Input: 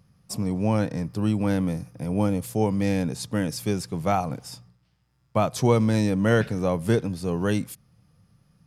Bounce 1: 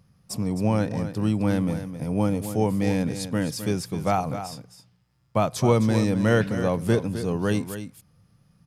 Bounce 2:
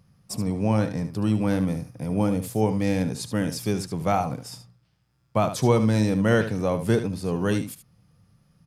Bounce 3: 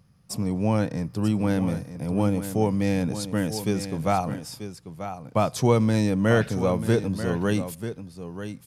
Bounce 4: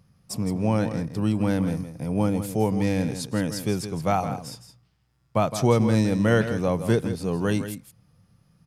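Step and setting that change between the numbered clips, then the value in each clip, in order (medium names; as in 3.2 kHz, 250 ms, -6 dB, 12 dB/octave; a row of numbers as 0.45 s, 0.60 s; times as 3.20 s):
delay, time: 261 ms, 74 ms, 938 ms, 164 ms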